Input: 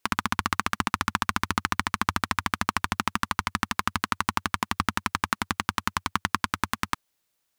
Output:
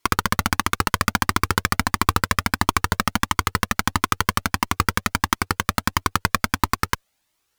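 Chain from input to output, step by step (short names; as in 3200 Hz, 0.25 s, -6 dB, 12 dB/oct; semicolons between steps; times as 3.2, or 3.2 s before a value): half-waves squared off; added harmonics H 6 -24 dB, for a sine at -2 dBFS; cascading flanger rising 1.5 Hz; gain +6 dB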